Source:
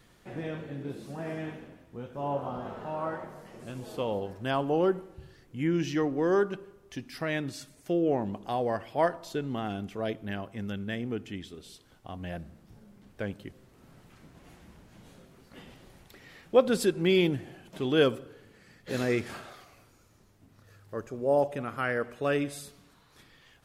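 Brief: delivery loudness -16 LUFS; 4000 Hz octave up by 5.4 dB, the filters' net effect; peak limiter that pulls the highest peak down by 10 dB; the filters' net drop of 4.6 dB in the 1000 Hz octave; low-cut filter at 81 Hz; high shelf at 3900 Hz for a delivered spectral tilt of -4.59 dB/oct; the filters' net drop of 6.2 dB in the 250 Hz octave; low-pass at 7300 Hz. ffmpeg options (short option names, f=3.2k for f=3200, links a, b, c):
-af "highpass=81,lowpass=7.3k,equalizer=f=250:t=o:g=-9,equalizer=f=1k:t=o:g=-6.5,highshelf=f=3.9k:g=5,equalizer=f=4k:t=o:g=5,volume=20dB,alimiter=limit=-1.5dB:level=0:latency=1"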